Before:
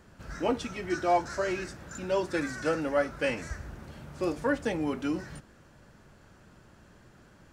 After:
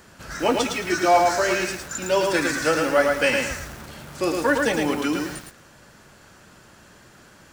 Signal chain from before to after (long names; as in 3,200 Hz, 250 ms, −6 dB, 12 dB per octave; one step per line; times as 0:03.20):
spectral tilt +2 dB per octave
feedback echo at a low word length 110 ms, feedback 35%, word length 8 bits, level −3 dB
level +8.5 dB